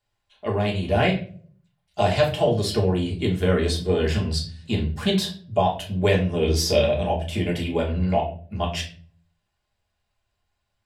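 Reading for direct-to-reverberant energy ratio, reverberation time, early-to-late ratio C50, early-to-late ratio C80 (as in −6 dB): −2.5 dB, non-exponential decay, 9.5 dB, 14.0 dB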